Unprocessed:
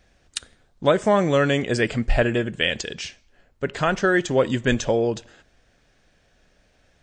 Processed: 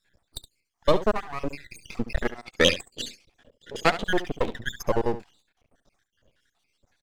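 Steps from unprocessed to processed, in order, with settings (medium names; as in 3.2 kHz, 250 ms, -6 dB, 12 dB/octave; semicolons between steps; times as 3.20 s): random holes in the spectrogram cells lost 80%; 0.96–1.63 s: treble shelf 2.2 kHz -11 dB; half-wave rectifier; 2.38–4.03 s: graphic EQ 125/250/500/2000/4000/8000 Hz +3/+7/+10/+4/+8/+5 dB; delay 70 ms -13.5 dB; trim +3 dB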